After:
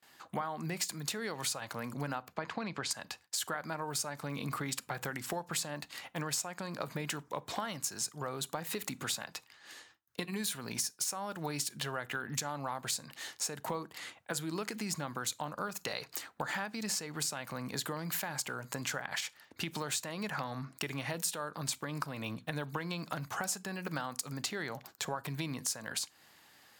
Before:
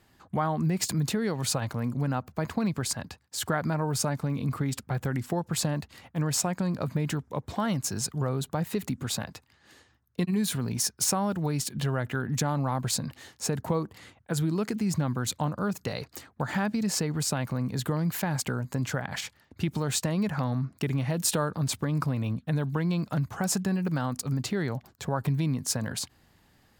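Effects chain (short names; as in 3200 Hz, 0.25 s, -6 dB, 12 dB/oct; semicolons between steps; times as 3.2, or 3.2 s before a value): 2.28–2.91 LPF 4200 Hz 12 dB/oct; gate with hold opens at -53 dBFS; HPF 1100 Hz 6 dB/oct; compressor 6:1, threshold -40 dBFS, peak gain reduction 16.5 dB; on a send: reverb, pre-delay 3 ms, DRR 18 dB; on the sum: gain +6.5 dB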